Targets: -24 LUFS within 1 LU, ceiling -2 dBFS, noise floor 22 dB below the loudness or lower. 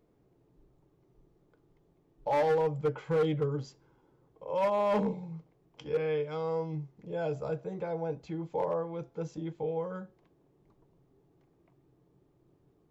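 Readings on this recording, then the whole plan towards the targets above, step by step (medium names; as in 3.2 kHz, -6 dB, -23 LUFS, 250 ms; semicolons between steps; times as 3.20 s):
clipped samples 1.1%; clipping level -23.0 dBFS; loudness -32.5 LUFS; peak level -23.0 dBFS; loudness target -24.0 LUFS
-> clip repair -23 dBFS; trim +8.5 dB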